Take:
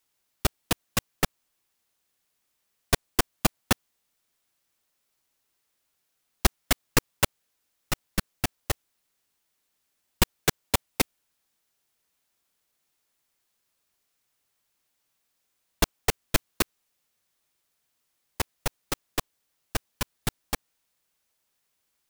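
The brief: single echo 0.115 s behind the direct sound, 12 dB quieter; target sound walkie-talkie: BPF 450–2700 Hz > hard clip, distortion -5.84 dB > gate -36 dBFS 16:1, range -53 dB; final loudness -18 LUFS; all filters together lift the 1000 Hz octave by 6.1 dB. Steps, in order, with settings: BPF 450–2700 Hz; bell 1000 Hz +8 dB; echo 0.115 s -12 dB; hard clip -23 dBFS; gate -36 dBFS 16:1, range -53 dB; gain +18 dB

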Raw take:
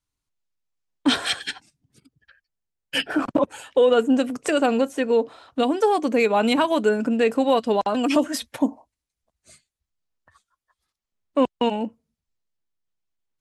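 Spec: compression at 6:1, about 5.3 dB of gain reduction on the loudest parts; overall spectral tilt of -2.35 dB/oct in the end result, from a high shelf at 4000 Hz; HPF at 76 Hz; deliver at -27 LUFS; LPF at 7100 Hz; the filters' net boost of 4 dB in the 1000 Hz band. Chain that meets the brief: HPF 76 Hz; LPF 7100 Hz; bell 1000 Hz +5.5 dB; high shelf 4000 Hz -5.5 dB; compressor 6:1, threshold -18 dBFS; gain -2.5 dB

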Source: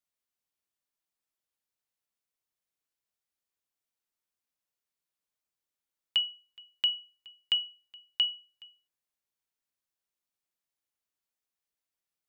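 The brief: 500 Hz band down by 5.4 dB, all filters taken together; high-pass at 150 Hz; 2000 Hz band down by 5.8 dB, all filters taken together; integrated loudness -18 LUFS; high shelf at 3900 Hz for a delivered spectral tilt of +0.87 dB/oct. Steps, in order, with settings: HPF 150 Hz; bell 500 Hz -6.5 dB; bell 2000 Hz -6 dB; high shelf 3900 Hz -6.5 dB; gain +17.5 dB

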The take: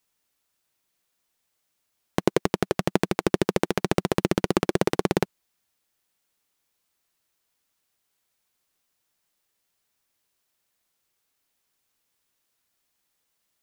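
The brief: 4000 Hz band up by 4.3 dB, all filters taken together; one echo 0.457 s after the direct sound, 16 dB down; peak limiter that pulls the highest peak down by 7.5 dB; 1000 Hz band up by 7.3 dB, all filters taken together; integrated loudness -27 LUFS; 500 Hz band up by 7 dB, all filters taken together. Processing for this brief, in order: bell 500 Hz +7.5 dB; bell 1000 Hz +6.5 dB; bell 4000 Hz +5 dB; limiter -5.5 dBFS; echo 0.457 s -16 dB; gain -1.5 dB

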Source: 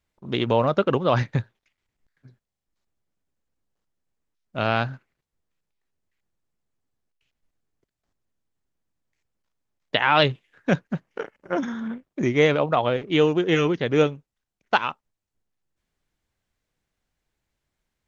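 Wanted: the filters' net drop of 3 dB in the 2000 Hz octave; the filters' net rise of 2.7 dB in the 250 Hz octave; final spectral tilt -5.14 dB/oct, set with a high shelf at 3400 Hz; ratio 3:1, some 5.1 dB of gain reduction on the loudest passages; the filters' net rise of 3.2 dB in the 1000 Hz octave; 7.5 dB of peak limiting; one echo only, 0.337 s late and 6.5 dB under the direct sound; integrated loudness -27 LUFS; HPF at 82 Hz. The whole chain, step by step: HPF 82 Hz; bell 250 Hz +3.5 dB; bell 1000 Hz +5.5 dB; bell 2000 Hz -9 dB; high shelf 3400 Hz +7.5 dB; compressor 3:1, threshold -18 dBFS; limiter -12.5 dBFS; echo 0.337 s -6.5 dB; gain -1 dB

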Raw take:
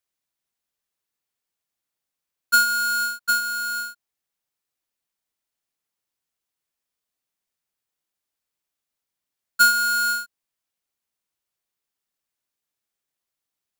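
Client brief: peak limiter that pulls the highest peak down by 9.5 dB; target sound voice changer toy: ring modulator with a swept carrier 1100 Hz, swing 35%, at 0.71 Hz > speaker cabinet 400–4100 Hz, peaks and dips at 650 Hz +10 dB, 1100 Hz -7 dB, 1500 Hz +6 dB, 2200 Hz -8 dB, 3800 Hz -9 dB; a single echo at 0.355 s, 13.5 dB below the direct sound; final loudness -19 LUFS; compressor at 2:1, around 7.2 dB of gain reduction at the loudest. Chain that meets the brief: compressor 2:1, threshold -27 dBFS; limiter -27.5 dBFS; echo 0.355 s -13.5 dB; ring modulator with a swept carrier 1100 Hz, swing 35%, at 0.71 Hz; speaker cabinet 400–4100 Hz, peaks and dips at 650 Hz +10 dB, 1100 Hz -7 dB, 1500 Hz +6 dB, 2200 Hz -8 dB, 3800 Hz -9 dB; gain +15.5 dB

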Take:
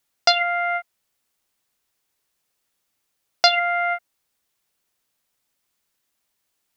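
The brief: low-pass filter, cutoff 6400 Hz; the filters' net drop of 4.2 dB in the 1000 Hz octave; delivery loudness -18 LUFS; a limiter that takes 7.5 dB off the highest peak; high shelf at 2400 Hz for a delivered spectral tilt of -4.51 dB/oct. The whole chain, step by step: LPF 6400 Hz; bell 1000 Hz -6.5 dB; high shelf 2400 Hz -7.5 dB; gain +9 dB; limiter -7.5 dBFS

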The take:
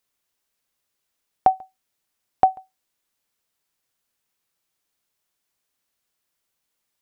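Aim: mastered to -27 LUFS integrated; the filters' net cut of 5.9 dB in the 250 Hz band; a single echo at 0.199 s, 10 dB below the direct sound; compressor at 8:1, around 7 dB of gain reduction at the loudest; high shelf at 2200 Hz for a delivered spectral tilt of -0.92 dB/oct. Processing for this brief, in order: bell 250 Hz -8.5 dB; high shelf 2200 Hz -5 dB; compressor 8:1, threshold -19 dBFS; echo 0.199 s -10 dB; gain +4 dB

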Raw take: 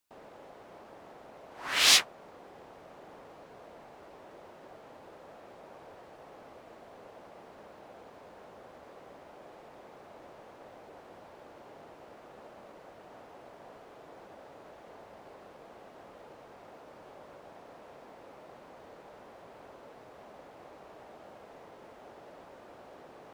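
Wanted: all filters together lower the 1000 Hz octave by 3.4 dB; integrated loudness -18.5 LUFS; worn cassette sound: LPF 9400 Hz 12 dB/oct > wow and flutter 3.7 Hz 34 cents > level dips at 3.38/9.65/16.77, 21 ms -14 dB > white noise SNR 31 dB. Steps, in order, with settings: LPF 9400 Hz 12 dB/oct; bell 1000 Hz -4.5 dB; wow and flutter 3.7 Hz 34 cents; level dips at 3.38/9.65/16.77, 21 ms -14 dB; white noise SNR 31 dB; gain +5.5 dB

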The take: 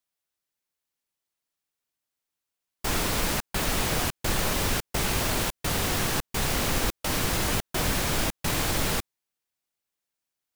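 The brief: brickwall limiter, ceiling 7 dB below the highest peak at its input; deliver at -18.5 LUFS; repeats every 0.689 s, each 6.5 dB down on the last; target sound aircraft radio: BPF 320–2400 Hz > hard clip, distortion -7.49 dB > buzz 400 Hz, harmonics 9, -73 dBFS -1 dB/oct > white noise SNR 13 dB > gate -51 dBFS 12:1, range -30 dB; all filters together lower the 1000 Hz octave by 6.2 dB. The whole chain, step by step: bell 1000 Hz -8 dB; limiter -20.5 dBFS; BPF 320–2400 Hz; feedback echo 0.689 s, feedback 47%, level -6.5 dB; hard clip -39 dBFS; buzz 400 Hz, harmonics 9, -73 dBFS -1 dB/oct; white noise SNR 13 dB; gate -51 dBFS 12:1, range -30 dB; gain +23 dB

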